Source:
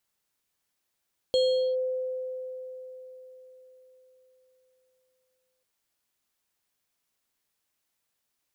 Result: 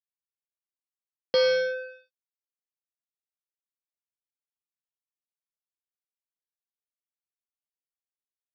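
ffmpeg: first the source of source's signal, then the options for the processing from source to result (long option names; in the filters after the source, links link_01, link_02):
-f lavfi -i "aevalsrc='0.112*pow(10,-3*t/4.36)*sin(2*PI*513*t+0.51*clip(1-t/0.42,0,1)*sin(2*PI*7.34*513*t))':duration=4.29:sample_rate=44100"
-af "lowshelf=frequency=140:width_type=q:width=3:gain=-10,aresample=11025,acrusher=bits=3:mix=0:aa=0.5,aresample=44100"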